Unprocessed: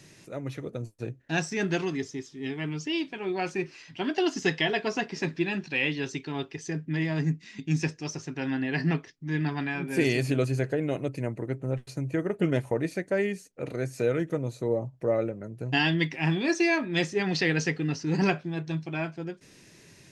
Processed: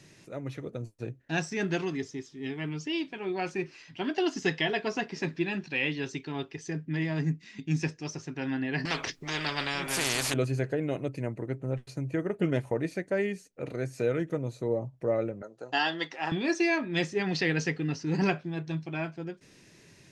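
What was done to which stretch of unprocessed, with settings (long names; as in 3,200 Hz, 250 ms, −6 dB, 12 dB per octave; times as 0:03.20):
0:08.85–0:10.34: every bin compressed towards the loudest bin 4 to 1
0:15.42–0:16.32: loudspeaker in its box 440–9,100 Hz, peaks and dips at 540 Hz +5 dB, 800 Hz +6 dB, 1,300 Hz +8 dB, 2,300 Hz −9 dB, 4,100 Hz +5 dB, 6,500 Hz +5 dB
whole clip: high-shelf EQ 9,300 Hz −6.5 dB; level −2 dB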